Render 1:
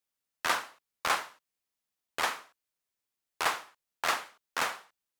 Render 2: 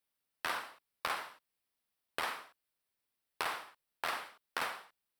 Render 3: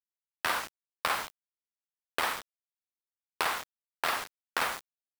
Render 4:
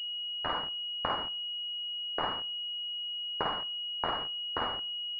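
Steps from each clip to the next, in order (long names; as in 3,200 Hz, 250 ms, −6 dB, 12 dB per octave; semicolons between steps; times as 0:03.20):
parametric band 6,700 Hz −12 dB 0.33 octaves; brickwall limiter −19 dBFS, peak gain reduction 4.5 dB; downward compressor 4 to 1, threshold −35 dBFS, peak gain reduction 8 dB; level +1.5 dB
in parallel at −12 dB: slack as between gear wheels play −55 dBFS; on the sum: bit reduction 7 bits; level +4.5 dB
on a send at −18 dB: convolution reverb RT60 0.50 s, pre-delay 4 ms; on the sum: switching amplifier with a slow clock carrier 2,900 Hz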